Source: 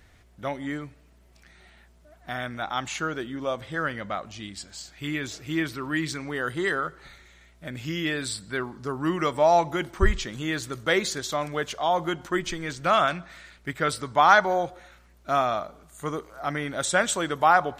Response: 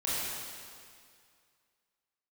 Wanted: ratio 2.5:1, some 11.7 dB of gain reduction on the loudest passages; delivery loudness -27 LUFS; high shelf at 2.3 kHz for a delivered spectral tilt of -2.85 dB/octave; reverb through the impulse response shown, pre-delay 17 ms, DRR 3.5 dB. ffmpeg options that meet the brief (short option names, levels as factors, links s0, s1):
-filter_complex "[0:a]highshelf=f=2300:g=8.5,acompressor=threshold=0.0398:ratio=2.5,asplit=2[s0][s1];[1:a]atrim=start_sample=2205,adelay=17[s2];[s1][s2]afir=irnorm=-1:irlink=0,volume=0.266[s3];[s0][s3]amix=inputs=2:normalize=0,volume=1.33"